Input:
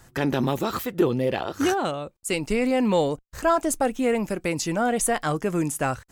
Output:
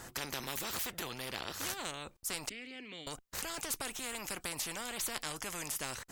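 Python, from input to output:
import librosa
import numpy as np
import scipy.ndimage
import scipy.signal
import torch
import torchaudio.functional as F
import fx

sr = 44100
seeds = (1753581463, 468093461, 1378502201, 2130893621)

y = fx.vowel_filter(x, sr, vowel='i', at=(2.49, 3.07))
y = fx.spectral_comp(y, sr, ratio=4.0)
y = y * 10.0 ** (-7.0 / 20.0)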